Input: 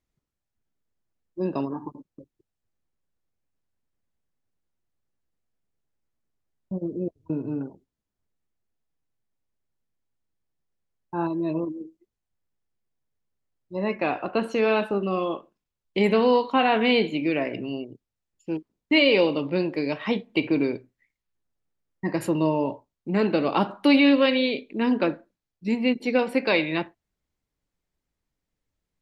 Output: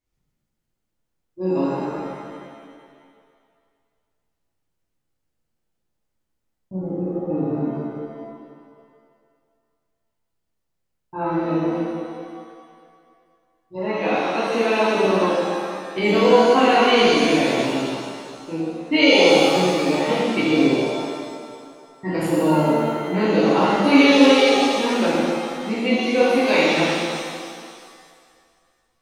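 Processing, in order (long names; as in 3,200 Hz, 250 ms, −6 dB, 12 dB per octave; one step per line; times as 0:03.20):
0:13.75–0:14.95: high-pass filter 190 Hz
reverb with rising layers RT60 2 s, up +7 semitones, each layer −8 dB, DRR −9.5 dB
level −4.5 dB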